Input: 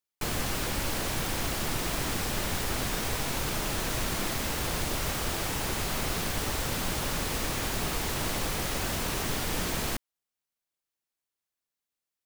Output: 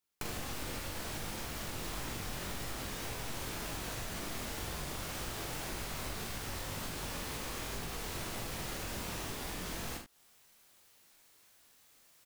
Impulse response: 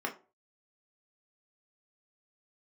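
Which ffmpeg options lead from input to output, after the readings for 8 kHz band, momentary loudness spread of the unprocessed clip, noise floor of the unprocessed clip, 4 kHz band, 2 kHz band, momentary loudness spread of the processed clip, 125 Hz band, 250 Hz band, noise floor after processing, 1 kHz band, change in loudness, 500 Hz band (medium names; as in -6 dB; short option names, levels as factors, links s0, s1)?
-9.5 dB, 0 LU, under -85 dBFS, -9.5 dB, -9.0 dB, 1 LU, -9.5 dB, -9.5 dB, -65 dBFS, -9.0 dB, -9.5 dB, -9.5 dB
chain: -af "areverse,acompressor=mode=upward:threshold=0.00316:ratio=2.5,areverse,flanger=delay=17.5:depth=6.5:speed=1.9,acompressor=threshold=0.00631:ratio=12,aecho=1:1:43|76:0.501|0.355,volume=2"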